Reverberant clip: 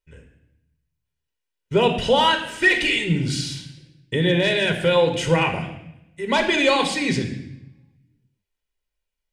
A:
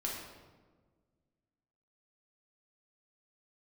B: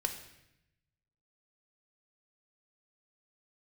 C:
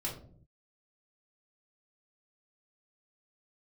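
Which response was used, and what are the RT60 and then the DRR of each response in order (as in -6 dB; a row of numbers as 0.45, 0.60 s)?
B; 1.5, 0.85, 0.55 s; -3.5, 5.0, -4.0 dB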